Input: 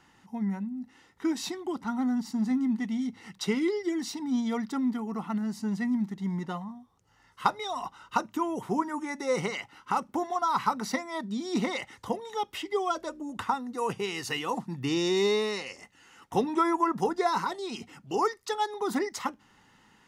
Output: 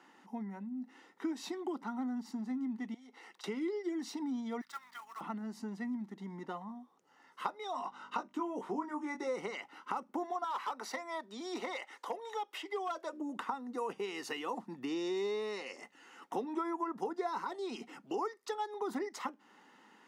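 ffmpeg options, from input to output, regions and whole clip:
-filter_complex "[0:a]asettb=1/sr,asplit=3[s0][s1][s2];[s0]atrim=end=2.944[s3];[s1]atrim=start=2.94:end=3.44,asetpts=PTS-STARTPTS,afade=t=in:d=0.004:c=qsin,afade=t=out:st=0.496:d=0.004:c=qsin,highpass=f=380:w=0.5412,highpass=f=380:w=1.3066,bandreject=f=590:w=14,acompressor=threshold=0.00355:ratio=12:attack=3.2:release=140:knee=1:detection=peak[s4];[s2]atrim=start=3.436[s5];[s3][s4]acrossfade=d=0.004:c1=hsin:c2=qsin[s6];[s6][s5]acrossfade=d=0.004:c1=qsin:c2=hsin,asettb=1/sr,asplit=3[s7][s8][s9];[s7]atrim=end=4.614[s10];[s8]atrim=start=4.61:end=5.21,asetpts=PTS-STARTPTS,afade=t=in:d=0.004:c=qsin,afade=t=out:st=0.596:d=0.004:c=qsin,highpass=f=1200:w=0.5412,highpass=f=1200:w=1.3066,acrusher=bits=2:mode=log:mix=0:aa=0.000001,aeval=exprs='val(0)+0.000708*(sin(2*PI*50*n/s)+sin(2*PI*2*50*n/s)/2+sin(2*PI*3*50*n/s)/3+sin(2*PI*4*50*n/s)/4+sin(2*PI*5*50*n/s)/5)':c=same[s11];[s9]atrim=start=5.206[s12];[s10][s11]acrossfade=d=0.004:c1=hsin:c2=qsin[s13];[s13][s12]acrossfade=d=0.004:c1=qsin:c2=hsin,asettb=1/sr,asplit=3[s14][s15][s16];[s14]atrim=end=7.724[s17];[s15]atrim=start=7.72:end=9.27,asetpts=PTS-STARTPTS,afade=t=in:d=0.004:c=qsin,afade=t=out:st=1.546:d=0.004:c=qsin,lowpass=8800,aeval=exprs='val(0)+0.00141*(sin(2*PI*50*n/s)+sin(2*PI*2*50*n/s)/2+sin(2*PI*3*50*n/s)/3+sin(2*PI*4*50*n/s)/4+sin(2*PI*5*50*n/s)/5)':c=same,asplit=2[s18][s19];[s19]adelay=20,volume=0.562[s20];[s18][s20]amix=inputs=2:normalize=0,atrim=end_sample=68355[s21];[s16]atrim=start=9.266[s22];[s17][s21]acrossfade=d=0.004:c1=hsin:c2=qsin[s23];[s23][s22]acrossfade=d=0.004:c1=qsin:c2=hsin,asettb=1/sr,asplit=3[s24][s25][s26];[s24]atrim=end=10.444[s27];[s25]atrim=start=10.44:end=13.13,asetpts=PTS-STARTPTS,afade=t=in:d=0.004:c=qsin,afade=t=out:st=2.686:d=0.004:c=qsin,highpass=500,asoftclip=type=hard:threshold=0.0562[s28];[s26]atrim=start=13.126[s29];[s27][s28]acrossfade=d=0.004:c1=hsin:c2=qsin[s30];[s30][s29]acrossfade=d=0.004:c1=qsin:c2=hsin,acompressor=threshold=0.0126:ratio=3,highpass=f=240:w=0.5412,highpass=f=240:w=1.3066,highshelf=f=2500:g=-8.5,volume=1.26"

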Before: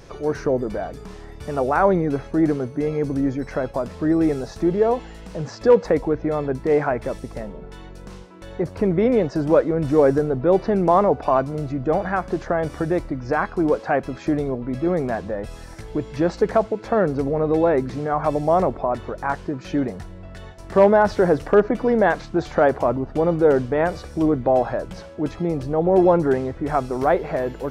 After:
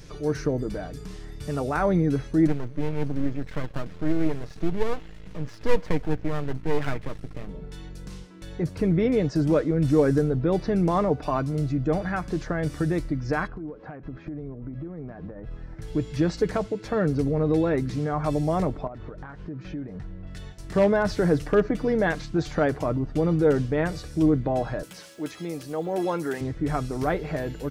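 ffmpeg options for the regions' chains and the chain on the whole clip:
-filter_complex "[0:a]asettb=1/sr,asplit=3[s0][s1][s2];[s0]atrim=end=2.474[s3];[s1]atrim=start=2.47:end=7.49,asetpts=PTS-STARTPTS,afade=t=in:d=0.004:c=qsin,afade=t=out:st=5.016:d=0.004:c=qsin,bass=f=250:g=-1,treble=f=4000:g=-13,aeval=exprs='max(val(0),0)':c=same[s4];[s2]atrim=start=7.486[s5];[s3][s4]acrossfade=d=0.004:c1=hsin:c2=qsin[s6];[s6][s5]acrossfade=d=0.004:c1=qsin:c2=hsin,asettb=1/sr,asplit=3[s7][s8][s9];[s7]atrim=end=13.474[s10];[s8]atrim=start=13.47:end=15.82,asetpts=PTS-STARTPTS,afade=t=in:d=0.004:c=qsin,afade=t=out:st=2.346:d=0.004:c=qsin,lowpass=1400,acompressor=threshold=0.0316:ratio=12:attack=3.2:release=140:knee=1:detection=peak[s11];[s9]atrim=start=15.816[s12];[s10][s11]acrossfade=d=0.004:c1=hsin:c2=qsin[s13];[s13][s12]acrossfade=d=0.004:c1=qsin:c2=hsin,asettb=1/sr,asplit=3[s14][s15][s16];[s14]atrim=end=18.874[s17];[s15]atrim=start=18.87:end=20.27,asetpts=PTS-STARTPTS,afade=t=in:d=0.004:c=qsin,afade=t=out:st=1.396:d=0.004:c=qsin,lowpass=1500,aemphasis=mode=production:type=75kf,acompressor=threshold=0.0282:ratio=4:attack=3.2:release=140:knee=1:detection=peak[s18];[s16]atrim=start=20.266[s19];[s17][s18]acrossfade=d=0.004:c1=hsin:c2=qsin[s20];[s20][s19]acrossfade=d=0.004:c1=qsin:c2=hsin,asettb=1/sr,asplit=3[s21][s22][s23];[s21]atrim=end=24.834[s24];[s22]atrim=start=24.83:end=26.41,asetpts=PTS-STARTPTS,afade=t=in:d=0.004:c=qsin,afade=t=out:st=1.576:d=0.004:c=qsin,aemphasis=mode=production:type=riaa,acrossover=split=2900[s25][s26];[s26]acompressor=threshold=0.00501:ratio=4:attack=1:release=60[s27];[s25][s27]amix=inputs=2:normalize=0,highpass=f=170:p=1[s28];[s23]atrim=start=26.406[s29];[s24][s28]acrossfade=d=0.004:c1=hsin:c2=qsin[s30];[s30][s29]acrossfade=d=0.004:c1=qsin:c2=hsin,equalizer=f=770:w=0.57:g=-11.5,aecho=1:1:6.6:0.36,volume=1.19"

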